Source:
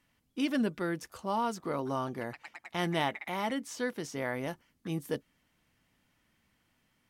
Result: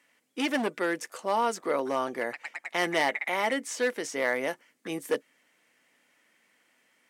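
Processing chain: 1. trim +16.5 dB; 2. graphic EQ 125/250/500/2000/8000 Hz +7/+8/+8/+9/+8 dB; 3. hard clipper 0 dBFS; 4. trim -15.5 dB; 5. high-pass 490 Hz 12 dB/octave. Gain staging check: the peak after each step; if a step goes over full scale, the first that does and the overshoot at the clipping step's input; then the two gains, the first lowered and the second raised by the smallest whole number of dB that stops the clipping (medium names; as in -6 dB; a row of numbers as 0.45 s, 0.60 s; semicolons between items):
+1.0 dBFS, +7.5 dBFS, 0.0 dBFS, -15.5 dBFS, -11.0 dBFS; step 1, 7.5 dB; step 1 +8.5 dB, step 4 -7.5 dB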